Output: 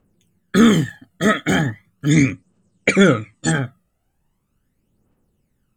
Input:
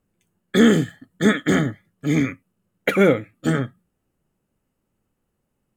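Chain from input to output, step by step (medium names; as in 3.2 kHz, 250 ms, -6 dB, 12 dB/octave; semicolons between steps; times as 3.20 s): phaser 0.39 Hz, delay 1.6 ms, feedback 62%; 2.11–3.52 s: FFT filter 2.2 kHz 0 dB, 8.5 kHz +11 dB, 12 kHz -28 dB; trim +2 dB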